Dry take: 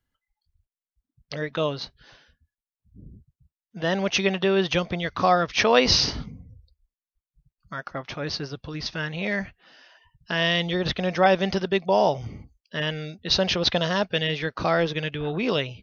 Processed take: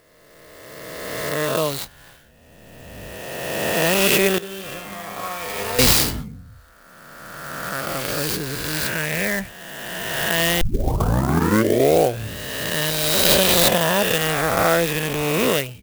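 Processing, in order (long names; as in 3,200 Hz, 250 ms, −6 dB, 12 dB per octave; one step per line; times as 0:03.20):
peak hold with a rise ahead of every peak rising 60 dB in 2.36 s
0:04.38–0:05.79: tuned comb filter 100 Hz, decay 1.2 s, harmonics all, mix 90%
0:10.61: tape start 1.74 s
converter with an unsteady clock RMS 0.045 ms
level +1.5 dB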